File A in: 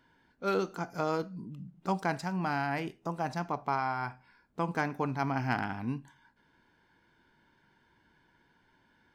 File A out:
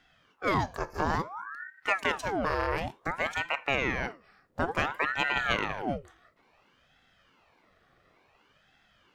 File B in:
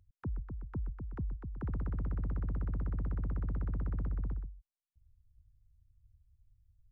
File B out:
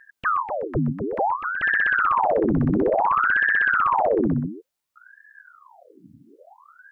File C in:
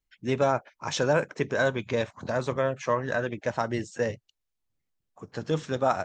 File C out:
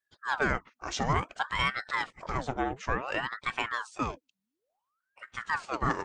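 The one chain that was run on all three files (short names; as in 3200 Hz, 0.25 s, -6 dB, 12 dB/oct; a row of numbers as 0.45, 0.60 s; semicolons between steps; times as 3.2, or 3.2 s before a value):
ring modulator with a swept carrier 950 Hz, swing 80%, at 0.57 Hz; normalise peaks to -12 dBFS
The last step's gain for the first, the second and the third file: +5.5, +16.5, -1.5 dB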